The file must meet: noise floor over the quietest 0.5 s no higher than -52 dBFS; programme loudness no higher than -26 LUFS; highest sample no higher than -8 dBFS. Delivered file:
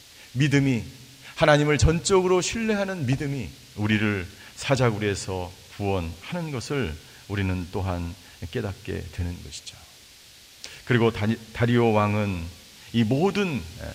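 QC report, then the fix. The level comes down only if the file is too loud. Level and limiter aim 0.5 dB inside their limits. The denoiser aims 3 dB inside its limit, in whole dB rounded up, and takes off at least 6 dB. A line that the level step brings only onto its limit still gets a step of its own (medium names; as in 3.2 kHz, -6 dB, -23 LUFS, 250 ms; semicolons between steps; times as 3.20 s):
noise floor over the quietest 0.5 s -50 dBFS: fail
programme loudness -25.0 LUFS: fail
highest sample -4.0 dBFS: fail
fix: noise reduction 6 dB, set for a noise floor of -50 dBFS; trim -1.5 dB; peak limiter -8.5 dBFS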